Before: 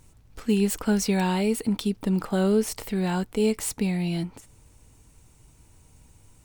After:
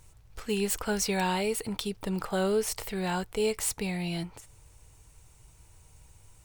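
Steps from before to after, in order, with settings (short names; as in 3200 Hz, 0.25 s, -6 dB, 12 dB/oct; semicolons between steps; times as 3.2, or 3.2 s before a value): bell 240 Hz -13.5 dB 0.86 oct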